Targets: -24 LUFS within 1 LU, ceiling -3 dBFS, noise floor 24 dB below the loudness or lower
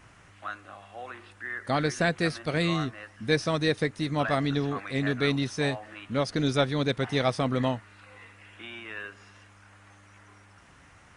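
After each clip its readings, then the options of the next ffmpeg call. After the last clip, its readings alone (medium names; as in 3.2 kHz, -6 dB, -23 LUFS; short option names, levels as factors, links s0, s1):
loudness -28.5 LUFS; peak level -10.0 dBFS; loudness target -24.0 LUFS
-> -af "volume=1.68"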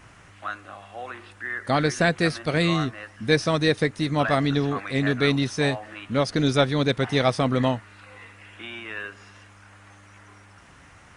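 loudness -24.0 LUFS; peak level -5.5 dBFS; noise floor -51 dBFS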